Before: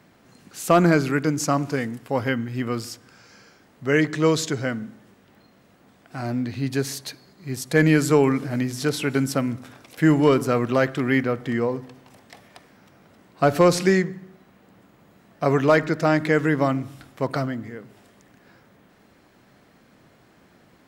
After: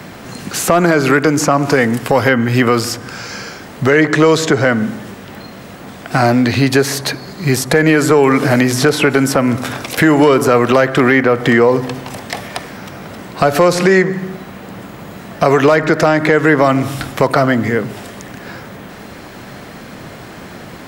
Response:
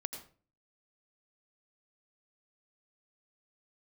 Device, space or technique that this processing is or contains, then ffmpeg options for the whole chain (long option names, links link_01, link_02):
mastering chain: -filter_complex "[0:a]equalizer=frequency=290:width_type=o:width=0.77:gain=-2,acrossover=split=330|2100[link_01][link_02][link_03];[link_01]acompressor=threshold=-38dB:ratio=4[link_04];[link_02]acompressor=threshold=-25dB:ratio=4[link_05];[link_03]acompressor=threshold=-44dB:ratio=4[link_06];[link_04][link_05][link_06]amix=inputs=3:normalize=0,acompressor=threshold=-32dB:ratio=2,asoftclip=type=tanh:threshold=-20.5dB,alimiter=level_in=24.5dB:limit=-1dB:release=50:level=0:latency=1,volume=-1dB"